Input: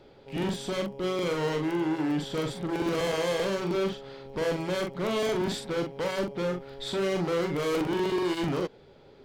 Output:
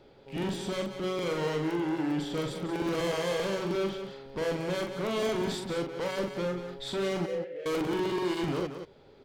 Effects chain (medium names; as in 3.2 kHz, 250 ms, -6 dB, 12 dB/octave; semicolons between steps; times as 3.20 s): 7.26–7.66 s: vowel filter e; delay 181 ms -9 dB; trim -2.5 dB